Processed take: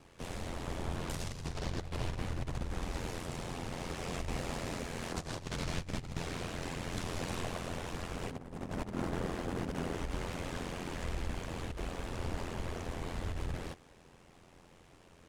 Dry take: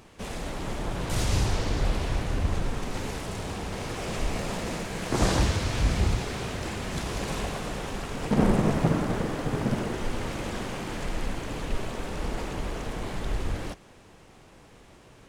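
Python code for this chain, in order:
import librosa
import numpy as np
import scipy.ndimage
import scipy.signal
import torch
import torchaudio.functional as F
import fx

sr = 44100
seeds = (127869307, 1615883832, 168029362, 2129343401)

y = fx.over_compress(x, sr, threshold_db=-27.0, ratio=-0.5)
y = y * np.sin(2.0 * np.pi * 43.0 * np.arange(len(y)) / sr)
y = y * 10.0 ** (-5.5 / 20.0)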